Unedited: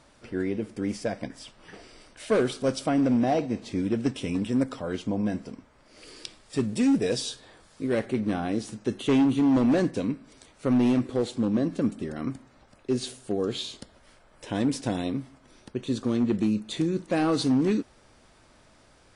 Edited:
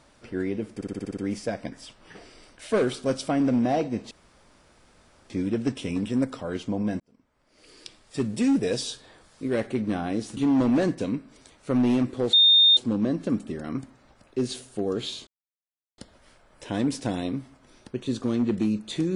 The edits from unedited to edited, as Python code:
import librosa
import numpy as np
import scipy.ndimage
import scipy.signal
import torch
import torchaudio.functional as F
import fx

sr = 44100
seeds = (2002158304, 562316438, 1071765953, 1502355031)

y = fx.edit(x, sr, fx.stutter(start_s=0.75, slice_s=0.06, count=8),
    fx.insert_room_tone(at_s=3.69, length_s=1.19),
    fx.fade_in_span(start_s=5.39, length_s=1.31),
    fx.cut(start_s=8.76, length_s=0.57),
    fx.insert_tone(at_s=11.29, length_s=0.44, hz=3650.0, db=-13.0),
    fx.insert_silence(at_s=13.79, length_s=0.71), tone=tone)